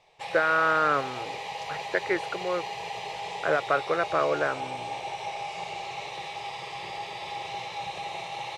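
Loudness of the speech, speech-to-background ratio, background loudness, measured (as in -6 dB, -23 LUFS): -26.5 LUFS, 9.0 dB, -35.5 LUFS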